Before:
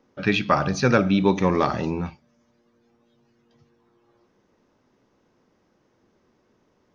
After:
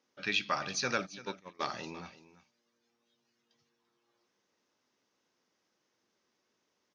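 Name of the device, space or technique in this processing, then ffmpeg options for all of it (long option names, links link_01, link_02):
piezo pickup straight into a mixer: -filter_complex "[0:a]asplit=3[link_01][link_02][link_03];[link_01]afade=type=out:start_time=1.05:duration=0.02[link_04];[link_02]agate=range=-26dB:threshold=-15dB:ratio=16:detection=peak,afade=type=in:start_time=1.05:duration=0.02,afade=type=out:start_time=1.59:duration=0.02[link_05];[link_03]afade=type=in:start_time=1.59:duration=0.02[link_06];[link_04][link_05][link_06]amix=inputs=3:normalize=0,lowpass=6100,aderivative,lowshelf=frequency=420:gain=10,aecho=1:1:340:0.158,volume=2.5dB"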